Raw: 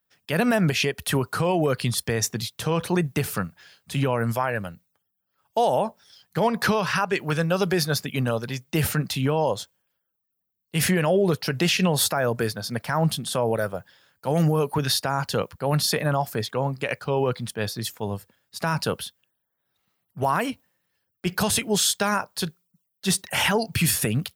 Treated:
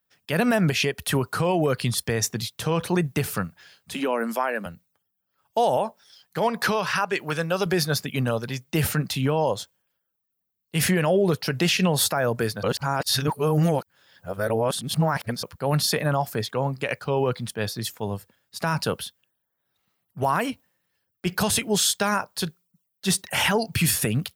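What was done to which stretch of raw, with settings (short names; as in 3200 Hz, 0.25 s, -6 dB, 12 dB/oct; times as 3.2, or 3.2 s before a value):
3.94–4.66 steep high-pass 180 Hz 72 dB/oct
5.77–7.66 low shelf 200 Hz -9 dB
12.63–15.43 reverse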